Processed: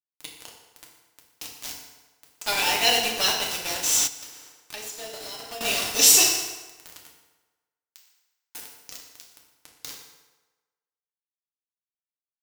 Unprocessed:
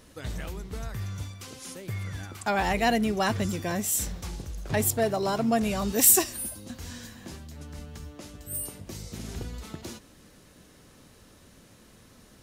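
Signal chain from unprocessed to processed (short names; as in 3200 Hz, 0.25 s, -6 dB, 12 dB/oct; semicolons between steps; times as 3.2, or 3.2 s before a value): HPF 360 Hz 12 dB/oct; band shelf 4100 Hz +15.5 dB; bit-crush 4-bit; FDN reverb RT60 1.2 s, low-frequency decay 0.8×, high-frequency decay 0.75×, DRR -1.5 dB; flange 0.57 Hz, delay 3.5 ms, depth 9.7 ms, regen -86%; 4.07–5.61 compressor 4:1, threshold -37 dBFS, peak gain reduction 15.5 dB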